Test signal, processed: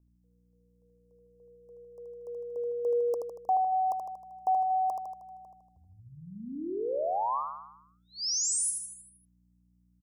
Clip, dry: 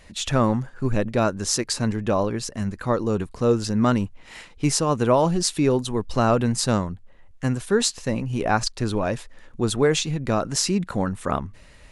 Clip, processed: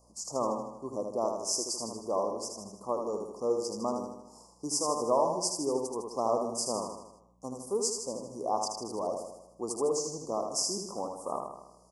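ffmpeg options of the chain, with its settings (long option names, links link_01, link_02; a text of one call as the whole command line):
ffmpeg -i in.wav -af "highpass=430,aeval=exprs='val(0)+0.00126*(sin(2*PI*60*n/s)+sin(2*PI*2*60*n/s)/2+sin(2*PI*3*60*n/s)/3+sin(2*PI*4*60*n/s)/4+sin(2*PI*5*60*n/s)/5)':channel_layout=same,asuperstop=centerf=2400:order=20:qfactor=0.65,aecho=1:1:78|156|234|312|390|468|546:0.562|0.304|0.164|0.0885|0.0478|0.0258|0.0139,volume=-7dB" out.wav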